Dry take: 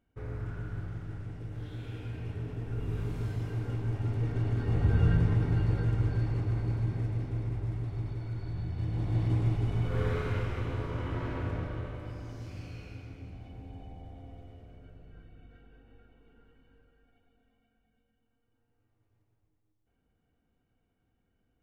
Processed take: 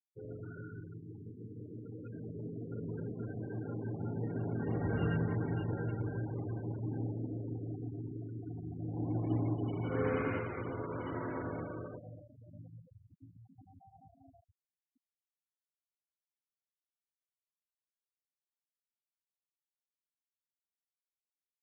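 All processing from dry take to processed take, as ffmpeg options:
-filter_complex "[0:a]asettb=1/sr,asplit=3[a][b][c];[a]atrim=end=1.044[d];[b]atrim=start=1.04:end=5.07,asetpts=PTS-STARTPTS,afade=t=in:d=0.004:c=qsin,afade=t=out:st=4.026:d=0.004:c=qsin,acrusher=bits=9:mode=log:mix=0:aa=0.000001,asplit=8[e][f][g][h][i][j][k][l];[f]adelay=84,afreqshift=50,volume=-12dB[m];[g]adelay=168,afreqshift=100,volume=-16.2dB[n];[h]adelay=252,afreqshift=150,volume=-20.3dB[o];[i]adelay=336,afreqshift=200,volume=-24.5dB[p];[j]adelay=420,afreqshift=250,volume=-28.6dB[q];[k]adelay=504,afreqshift=300,volume=-32.8dB[r];[l]adelay=588,afreqshift=350,volume=-36.9dB[s];[e][m][n][o][p][q][r][s]amix=inputs=8:normalize=0,atrim=end_sample=177723[t];[c]atrim=start=5.066[u];[d][t]acrossfade=d=0.004:c1=hsin:c2=qsin[v];[v][u]acrossfade=d=0.004:c1=qsin:c2=hsin,asettb=1/sr,asplit=3[w][x][y];[w]atrim=end=6.834[z];[x]atrim=start=6.83:end=10.38,asetpts=PTS-STARTPTS,afade=t=in:d=0.004:c=qsin,afade=t=out:st=3.546:d=0.004:c=qsin,equalizer=f=280:t=o:w=0.21:g=9.5,aecho=1:1:78|156|234|312|390|468|546|624:0.447|0.268|0.161|0.0965|0.0579|0.0347|0.0208|0.0125,atrim=end_sample=156555[aa];[y]atrim=start=10.376[ab];[z][aa]acrossfade=d=0.004:c1=hsin:c2=qsin[ac];[ac][ab]acrossfade=d=0.004:c1=qsin:c2=hsin,asettb=1/sr,asplit=3[ad][ae][af];[ad]atrim=end=11.994[ag];[ae]atrim=start=11.99:end=14.88,asetpts=PTS-STARTPTS,afade=t=in:d=0.004:c=qsin,afade=t=out:st=2.886:d=0.004:c=qsin,aecho=1:1:1.4:0.45,atrim=end_sample=127449,flanger=delay=17.5:depth=3.6:speed=1.4[ah];[af]atrim=start=14.876[ai];[ag][ah]acrossfade=d=0.004:c1=hsin:c2=qsin[aj];[aj][ai]acrossfade=d=0.004:c1=qsin:c2=hsin,highpass=190,afftfilt=real='re*gte(hypot(re,im),0.0112)':imag='im*gte(hypot(re,im),0.0112)':win_size=1024:overlap=0.75"

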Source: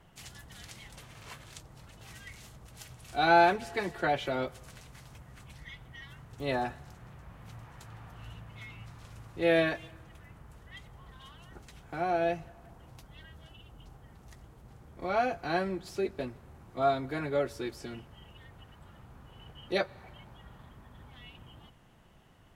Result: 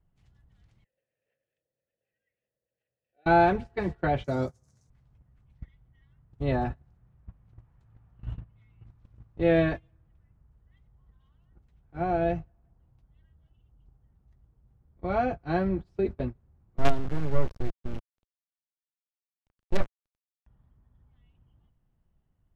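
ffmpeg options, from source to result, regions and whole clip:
-filter_complex "[0:a]asettb=1/sr,asplit=3[a][b][c];[a]atrim=end=0.844[d];[b]atrim=start=0.84:end=3.26,asetpts=PTS-STARTPTS,afade=t=in:d=0.004:c=qsin,afade=t=out:st=2.416:d=0.004:c=qsin,asplit=3[e][f][g];[e]bandpass=f=530:t=q:w=8,volume=0dB[h];[f]bandpass=f=1.84k:t=q:w=8,volume=-6dB[i];[g]bandpass=f=2.48k:t=q:w=8,volume=-9dB[j];[h][i][j]amix=inputs=3:normalize=0,lowshelf=f=120:g=-9[k];[c]atrim=start=3.256[l];[d][k]acrossfade=d=0.004:c1=hsin:c2=qsin[m];[m][l]acrossfade=d=0.004:c1=qsin:c2=hsin,asettb=1/sr,asplit=3[n][o][p];[n]atrim=end=4.244[q];[o]atrim=start=4.24:end=4.9,asetpts=PTS-STARTPTS,afade=t=in:d=0.004:c=qsin,afade=t=out:st=0.656:d=0.004:c=qsin,highpass=f=77:w=0.5412,highpass=f=77:w=1.3066,highshelf=f=4.3k:t=q:w=3:g=13.5[r];[p]atrim=start=4.896[s];[q][r]acrossfade=d=0.004:c1=hsin:c2=qsin[t];[t][s]acrossfade=d=0.004:c1=qsin:c2=hsin,asettb=1/sr,asplit=3[u][v][w];[u]atrim=end=16.774[x];[v]atrim=start=16.77:end=20.47,asetpts=PTS-STARTPTS,afade=t=in:d=0.004:c=qsin,afade=t=out:st=3.696:d=0.004:c=qsin,lowpass=f=3k:p=1,acrusher=bits=4:dc=4:mix=0:aa=0.000001[y];[w]atrim=start=20.466[z];[x][y]acrossfade=d=0.004:c1=hsin:c2=qsin[aa];[aa][z]acrossfade=d=0.004:c1=qsin:c2=hsin,aemphasis=mode=reproduction:type=riaa,agate=range=-23dB:threshold=-30dB:ratio=16:detection=peak"

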